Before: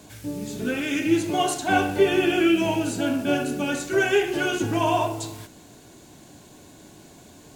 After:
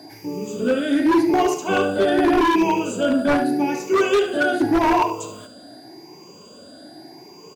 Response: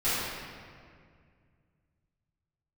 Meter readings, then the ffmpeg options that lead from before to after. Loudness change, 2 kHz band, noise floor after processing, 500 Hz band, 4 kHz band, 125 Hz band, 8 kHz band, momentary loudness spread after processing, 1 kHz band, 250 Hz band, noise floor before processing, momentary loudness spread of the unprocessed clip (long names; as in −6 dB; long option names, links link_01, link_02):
+4.0 dB, +1.5 dB, −45 dBFS, +4.0 dB, −0.5 dB, −3.5 dB, −2.0 dB, 8 LU, +5.5 dB, +4.5 dB, −49 dBFS, 11 LU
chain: -filter_complex "[0:a]afftfilt=real='re*pow(10,15/40*sin(2*PI*(0.77*log(max(b,1)*sr/1024/100)/log(2)-(0.85)*(pts-256)/sr)))':imag='im*pow(10,15/40*sin(2*PI*(0.77*log(max(b,1)*sr/1024/100)/log(2)-(0.85)*(pts-256)/sr)))':win_size=1024:overlap=0.75,highpass=frequency=250:poles=1,equalizer=frequency=410:width=0.32:gain=12.5,asplit=2[link_01][link_02];[link_02]asoftclip=type=hard:threshold=-7.5dB,volume=-12dB[link_03];[link_01][link_03]amix=inputs=2:normalize=0,aeval=exprs='val(0)+0.0126*sin(2*PI*4800*n/s)':channel_layout=same,aeval=exprs='0.668*(abs(mod(val(0)/0.668+3,4)-2)-1)':channel_layout=same,asplit=2[link_04][link_05];[link_05]aecho=0:1:72:0.188[link_06];[link_04][link_06]amix=inputs=2:normalize=0,volume=-8dB"